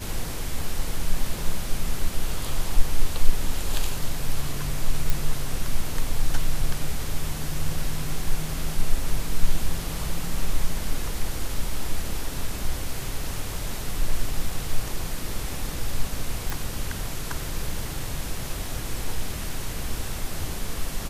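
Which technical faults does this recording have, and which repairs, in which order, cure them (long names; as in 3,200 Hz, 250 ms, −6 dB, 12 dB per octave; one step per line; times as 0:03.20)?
0:05.10: click
0:16.50: click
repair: click removal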